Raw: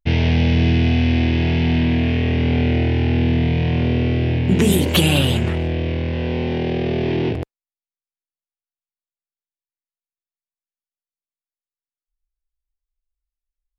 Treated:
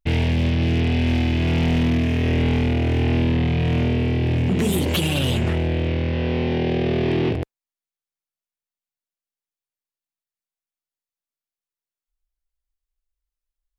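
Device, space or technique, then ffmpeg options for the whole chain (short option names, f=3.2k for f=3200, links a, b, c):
limiter into clipper: -af "alimiter=limit=-10dB:level=0:latency=1:release=117,asoftclip=type=hard:threshold=-15.5dB"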